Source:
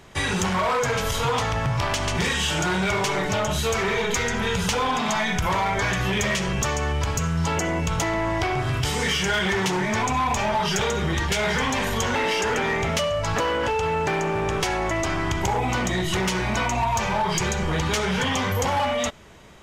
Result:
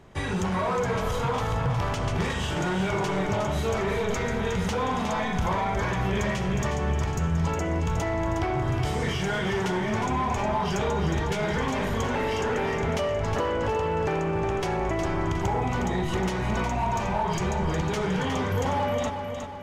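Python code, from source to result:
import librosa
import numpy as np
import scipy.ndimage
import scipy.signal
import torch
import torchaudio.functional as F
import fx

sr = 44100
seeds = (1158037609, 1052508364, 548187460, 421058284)

p1 = fx.tilt_shelf(x, sr, db=5.5, hz=1500.0)
p2 = p1 + fx.echo_feedback(p1, sr, ms=362, feedback_pct=49, wet_db=-7.0, dry=0)
y = p2 * 10.0 ** (-7.0 / 20.0)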